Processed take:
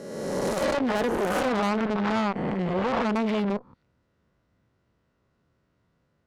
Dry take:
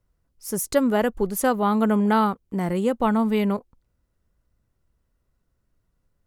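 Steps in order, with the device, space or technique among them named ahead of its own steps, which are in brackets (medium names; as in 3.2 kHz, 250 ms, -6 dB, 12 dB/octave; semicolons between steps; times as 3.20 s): reverse spectral sustain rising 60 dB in 1.32 s; valve radio (band-pass 120–4100 Hz; valve stage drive 27 dB, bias 0.5; transformer saturation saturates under 360 Hz); 1.82–3.09 s: distance through air 76 m; trim +7 dB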